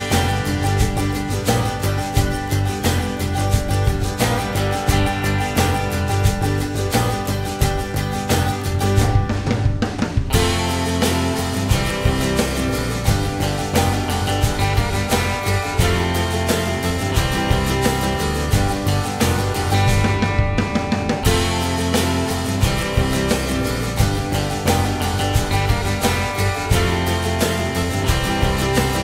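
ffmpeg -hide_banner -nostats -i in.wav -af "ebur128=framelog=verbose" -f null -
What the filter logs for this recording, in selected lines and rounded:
Integrated loudness:
  I:         -19.4 LUFS
  Threshold: -29.4 LUFS
Loudness range:
  LRA:         1.3 LU
  Threshold: -39.4 LUFS
  LRA low:   -20.0 LUFS
  LRA high:  -18.7 LUFS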